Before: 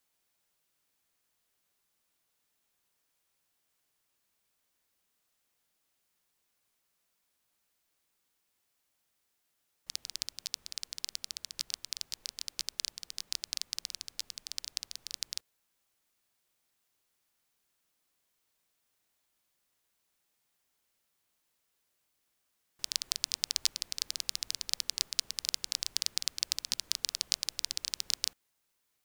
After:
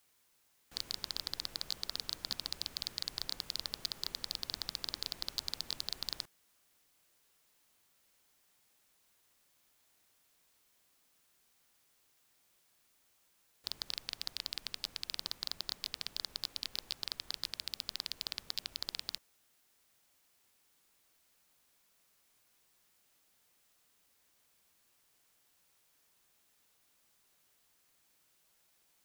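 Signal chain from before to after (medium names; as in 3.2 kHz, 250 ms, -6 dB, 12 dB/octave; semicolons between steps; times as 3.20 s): reverse the whole clip; slew-rate limiter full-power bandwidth 190 Hz; trim +6.5 dB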